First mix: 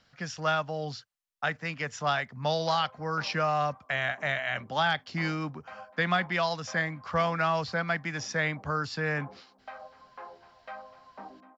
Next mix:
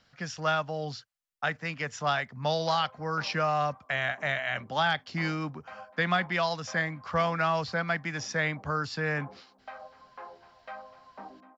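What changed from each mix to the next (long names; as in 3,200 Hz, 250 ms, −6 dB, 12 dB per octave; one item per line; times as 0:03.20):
nothing changed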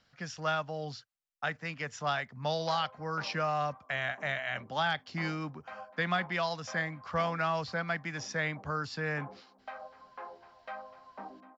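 speech −4.0 dB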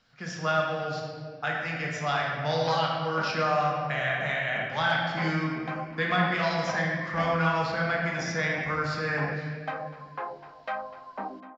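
background +9.5 dB
reverb: on, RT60 2.1 s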